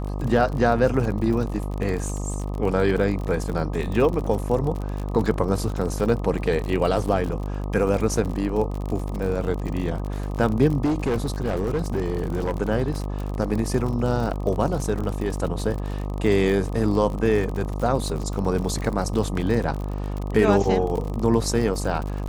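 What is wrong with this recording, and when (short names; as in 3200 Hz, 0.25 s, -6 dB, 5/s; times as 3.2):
buzz 50 Hz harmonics 25 -28 dBFS
crackle 48/s -28 dBFS
10.85–12.62 clipped -19 dBFS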